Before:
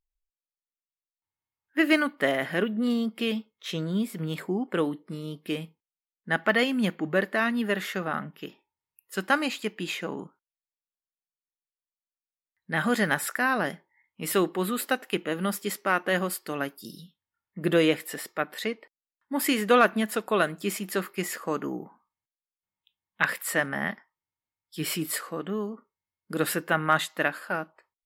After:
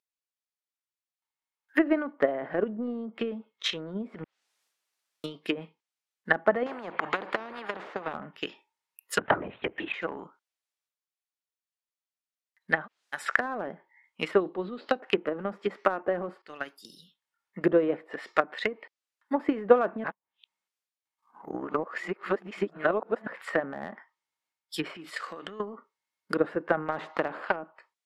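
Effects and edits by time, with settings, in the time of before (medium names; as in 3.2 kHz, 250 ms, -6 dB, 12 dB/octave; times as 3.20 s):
4.24–5.24 s: room tone
6.66–8.15 s: spectrum-flattening compressor 4:1
9.18–9.94 s: LPC vocoder at 8 kHz whisper
12.80–13.20 s: room tone, crossfade 0.16 s
14.40–15.00 s: FFT filter 160 Hz 0 dB, 1.9 kHz -5 dB, 4.5 kHz +14 dB, 9.6 kHz -14 dB
16.42–17.59 s: fade in, from -16 dB
20.04–23.27 s: reverse
24.93–25.60 s: compression 10:1, threshold -33 dBFS
26.86–27.56 s: spectrum-flattening compressor 2:1
whole clip: low-pass that closes with the level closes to 680 Hz, closed at -25.5 dBFS; frequency weighting A; transient shaper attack +11 dB, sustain +7 dB; trim -1 dB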